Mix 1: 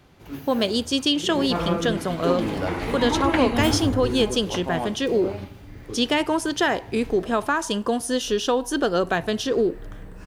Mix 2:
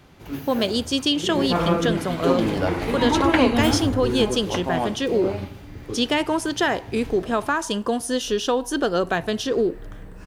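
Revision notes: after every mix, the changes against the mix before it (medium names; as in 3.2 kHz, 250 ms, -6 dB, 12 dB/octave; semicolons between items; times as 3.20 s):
first sound +4.0 dB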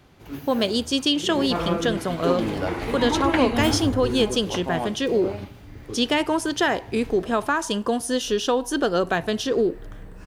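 reverb: off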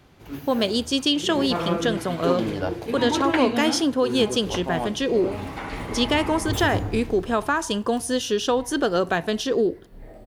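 second sound: entry +2.90 s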